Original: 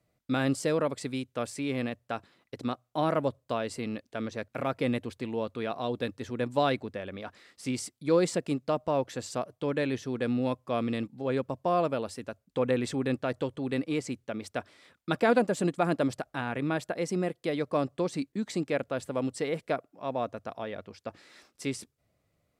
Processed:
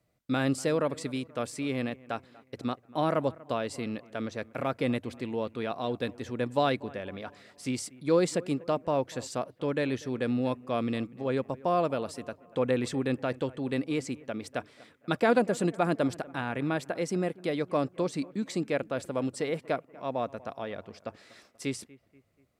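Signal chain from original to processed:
bucket-brigade delay 241 ms, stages 4,096, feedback 47%, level −21.5 dB

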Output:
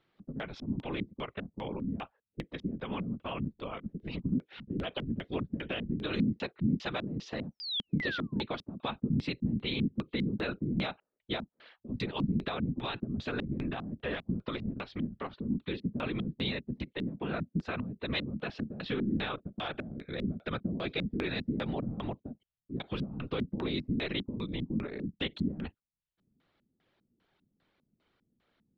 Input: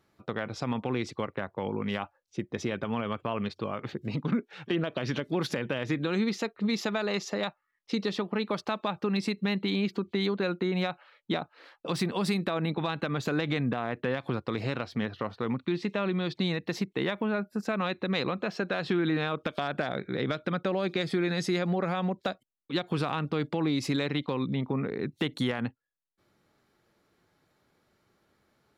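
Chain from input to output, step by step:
random phases in short frames
sound drawn into the spectrogram fall, 0:07.51–0:08.42, 830–6,100 Hz −33 dBFS
auto-filter low-pass square 2.5 Hz 220–3,300 Hz
level −6 dB

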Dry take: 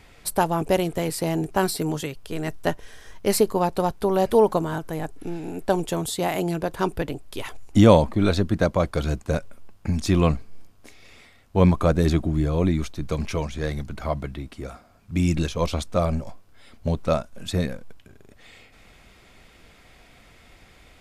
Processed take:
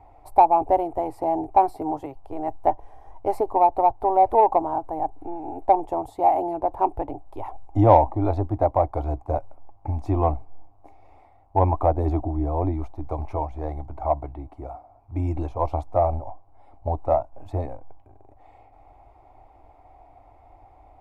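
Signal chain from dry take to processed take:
drawn EQ curve 110 Hz 0 dB, 190 Hz −25 dB, 290 Hz 0 dB, 480 Hz −6 dB, 800 Hz +14 dB, 1,600 Hz −20 dB, 2,200 Hz −15 dB, 3,200 Hz −26 dB, 7,500 Hz −27 dB, 13,000 Hz −23 dB
in parallel at −8.5 dB: soft clipping −10 dBFS, distortion −14 dB
on the sum: level −3 dB

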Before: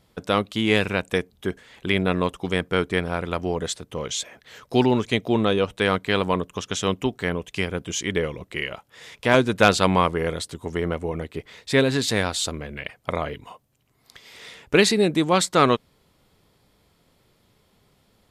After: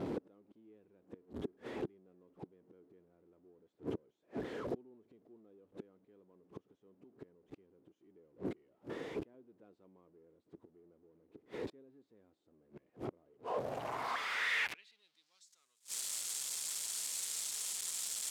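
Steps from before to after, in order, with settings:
converter with a step at zero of −18.5 dBFS
gate with flip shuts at −18 dBFS, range −35 dB
band-pass filter sweep 330 Hz → 7,800 Hz, 0:13.23–0:15.65
level −4 dB

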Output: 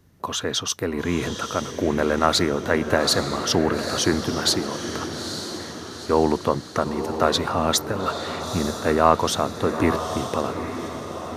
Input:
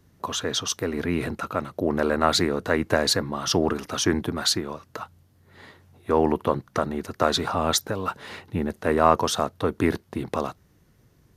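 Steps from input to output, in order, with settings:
feedback delay with all-pass diffusion 886 ms, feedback 50%, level −8 dB
level +1.5 dB

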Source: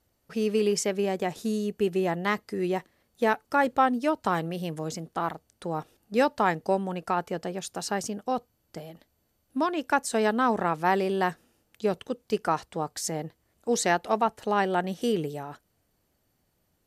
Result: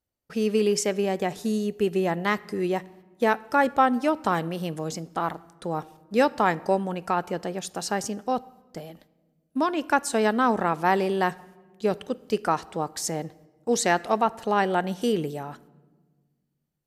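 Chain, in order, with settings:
noise gate −56 dBFS, range −17 dB
on a send: convolution reverb RT60 1.4 s, pre-delay 4 ms, DRR 19 dB
on the sum: level +2 dB

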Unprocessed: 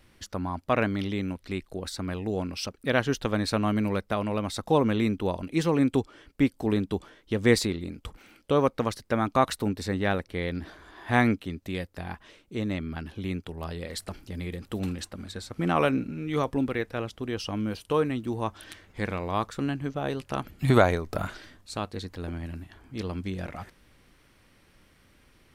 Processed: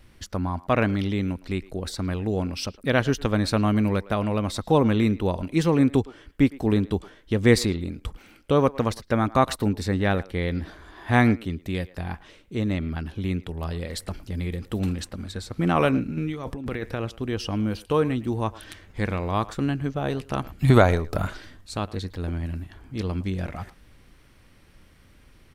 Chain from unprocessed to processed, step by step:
low-shelf EQ 140 Hz +7.5 dB
0:16.17–0:17.05: compressor whose output falls as the input rises −32 dBFS, ratio −1
far-end echo of a speakerphone 110 ms, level −19 dB
level +2 dB

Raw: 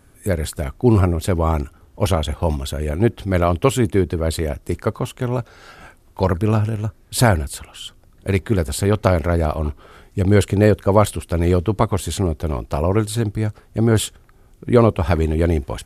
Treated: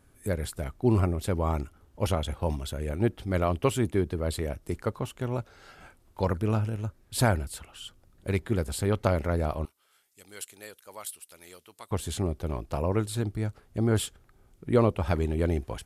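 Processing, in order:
0:09.65–0:11.91: first difference
level −9 dB

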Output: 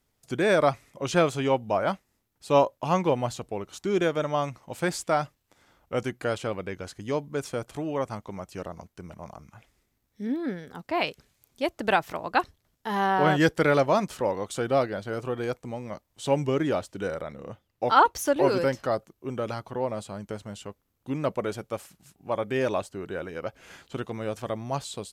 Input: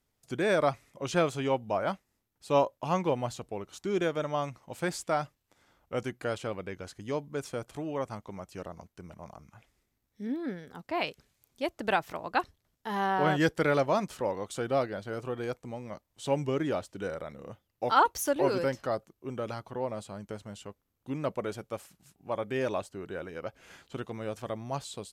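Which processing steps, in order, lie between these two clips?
0:17.21–0:18.37: high-shelf EQ 7,600 Hz −7 dB
level +4.5 dB

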